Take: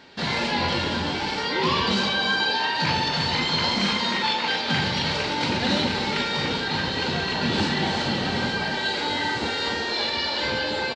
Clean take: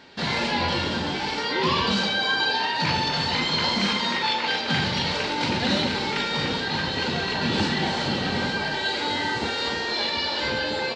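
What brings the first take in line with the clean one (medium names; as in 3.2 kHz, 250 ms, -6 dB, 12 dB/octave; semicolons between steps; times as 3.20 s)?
inverse comb 353 ms -10.5 dB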